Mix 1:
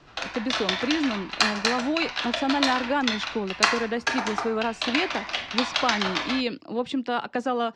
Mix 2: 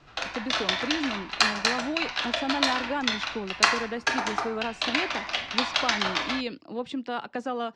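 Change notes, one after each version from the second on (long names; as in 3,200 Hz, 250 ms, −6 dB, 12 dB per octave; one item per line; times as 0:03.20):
speech −5.0 dB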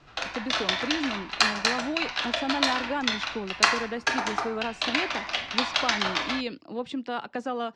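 nothing changed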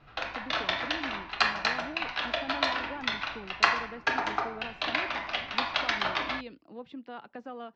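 speech −10.0 dB
master: add high-frequency loss of the air 200 metres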